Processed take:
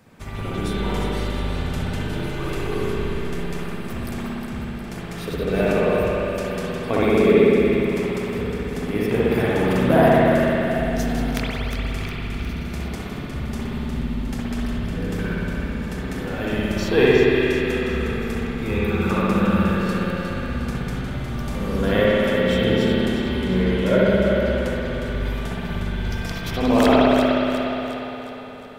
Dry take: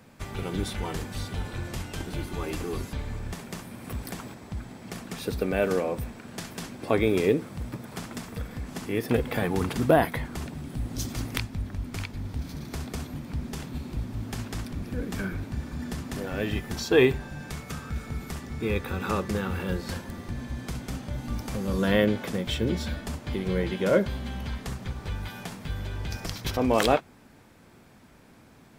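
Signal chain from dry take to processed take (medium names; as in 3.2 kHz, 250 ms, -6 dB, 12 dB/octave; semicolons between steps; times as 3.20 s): two-band feedback delay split 460 Hz, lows 122 ms, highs 359 ms, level -7 dB; spring tank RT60 3.4 s, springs 59 ms, chirp 40 ms, DRR -7.5 dB; trim -1 dB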